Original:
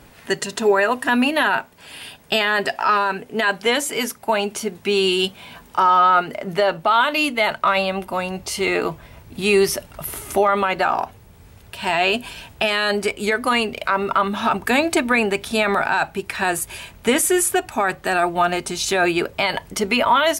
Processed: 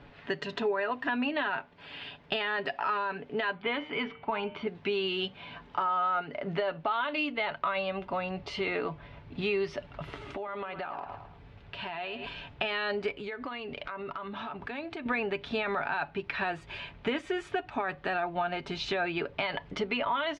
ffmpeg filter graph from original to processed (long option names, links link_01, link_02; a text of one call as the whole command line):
ffmpeg -i in.wav -filter_complex "[0:a]asettb=1/sr,asplit=3[link_01][link_02][link_03];[link_01]atrim=end=3.534[link_04];[link_02]atrim=start=3.53:end=4.67,asetpts=PTS-STARTPTS,afade=type=in:duration=0.004:curve=qsin,afade=type=out:start_time=1.136:duration=0.004:curve=qsin,lowpass=frequency=3500:width=0.5412,lowpass=frequency=3500:width=1.3066,aecho=1:1:0.9:0.35,atrim=end_sample=50274,bandreject=frequency=151.6:width_type=h:width=4,bandreject=frequency=303.2:width_type=h:width=4,bandreject=frequency=454.8:width_type=h:width=4,bandreject=frequency=606.4:width_type=h:width=4,bandreject=frequency=758:width_type=h:width=4,bandreject=frequency=909.6:width_type=h:width=4,bandreject=frequency=1061.2:width_type=h:width=4,bandreject=frequency=1212.8:width_type=h:width=4,bandreject=frequency=1364.4:width_type=h:width=4,bandreject=frequency=1516:width_type=h:width=4,bandreject=frequency=1667.6:width_type=h:width=4,bandreject=frequency=1819.2:width_type=h:width=4,bandreject=frequency=1970.8:width_type=h:width=4,bandreject=frequency=2122.4:width_type=h:width=4,bandreject=frequency=2274:width_type=h:width=4,bandreject=frequency=2425.6:width_type=h:width=4,bandreject=frequency=2577.2:width_type=h:width=4,bandreject=frequency=2728.8:width_type=h:width=4,bandreject=frequency=2880.4:width_type=h:width=4,bandreject=frequency=3032:width_type=h:width=4[link_05];[link_03]atrim=start=4.666[link_06];[link_04][link_05]acrossfade=duration=0.004:curve1=hsin:curve2=qsin[link_07];[link_07][link_06]acrossfade=duration=0.004:curve1=qsin:curve2=hsin,asettb=1/sr,asplit=3[link_08][link_09][link_10];[link_08]atrim=end=10.144[link_11];[link_09]atrim=start=10.14:end=12.27,asetpts=PTS-STARTPTS,afade=type=in:duration=0.004:curve=qsin,afade=type=out:start_time=2.126:duration=0.004:curve=qsin,aecho=1:1:108|216|324|432:0.188|0.0716|0.0272|0.0103,atrim=end_sample=93933,acompressor=threshold=-28dB:ratio=8:attack=3.2:release=140:knee=1:detection=peak[link_12];[link_10]atrim=start=12.266[link_13];[link_11][link_12]acrossfade=duration=0.004:curve1=hsin:curve2=qsin[link_14];[link_14][link_13]acrossfade=duration=0.004:curve1=qsin:curve2=hsin,asettb=1/sr,asplit=3[link_15][link_16][link_17];[link_15]atrim=end=13.164[link_18];[link_16]atrim=start=13.16:end=15.06,asetpts=PTS-STARTPTS,afade=type=in:duration=0.004:curve=qsin,afade=type=out:start_time=1.896:duration=0.004:curve=qsin,acompressor=threshold=-28dB:ratio=16:attack=3.2:release=140:knee=1:detection=peak,aeval=exprs='0.1*(abs(mod(val(0)/0.1+3,4)-2)-1)':channel_layout=same[link_19];[link_17]atrim=start=15.056[link_20];[link_18][link_19]acrossfade=duration=0.004:curve1=hsin:curve2=qsin[link_21];[link_21][link_20]acrossfade=duration=0.004:curve1=qsin:curve2=hsin,lowpass=frequency=3700:width=0.5412,lowpass=frequency=3700:width=1.3066,aecho=1:1:7:0.34,acompressor=threshold=-24dB:ratio=3,volume=-5.5dB" out.wav